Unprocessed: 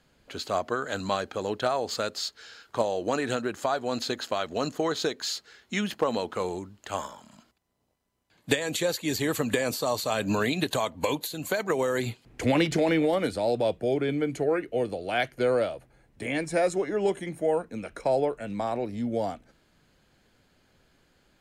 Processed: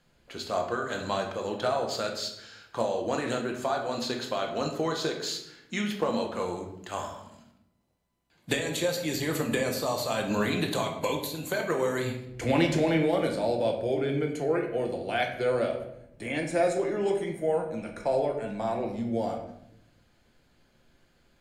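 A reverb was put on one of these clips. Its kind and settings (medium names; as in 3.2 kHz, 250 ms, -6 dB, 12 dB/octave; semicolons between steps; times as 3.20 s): simulated room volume 220 m³, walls mixed, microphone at 0.83 m; trim -3.5 dB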